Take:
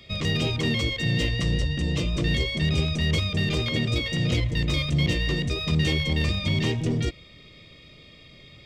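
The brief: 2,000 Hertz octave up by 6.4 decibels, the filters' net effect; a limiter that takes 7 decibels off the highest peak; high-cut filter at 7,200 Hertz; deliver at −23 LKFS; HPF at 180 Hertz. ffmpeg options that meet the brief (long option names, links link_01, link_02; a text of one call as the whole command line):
ffmpeg -i in.wav -af "highpass=180,lowpass=7200,equalizer=frequency=2000:width_type=o:gain=7.5,volume=3.5dB,alimiter=limit=-14.5dB:level=0:latency=1" out.wav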